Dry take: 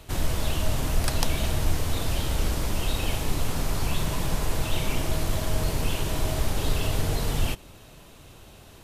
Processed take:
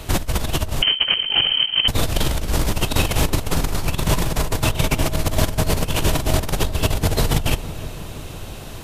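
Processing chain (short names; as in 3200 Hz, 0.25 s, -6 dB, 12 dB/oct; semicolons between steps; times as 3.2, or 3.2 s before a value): negative-ratio compressor -27 dBFS, ratio -0.5; on a send: darkening echo 0.327 s, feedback 72%, low-pass 1000 Hz, level -13.5 dB; 0.82–1.88 on the sum: inverted band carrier 3100 Hz; gain +8.5 dB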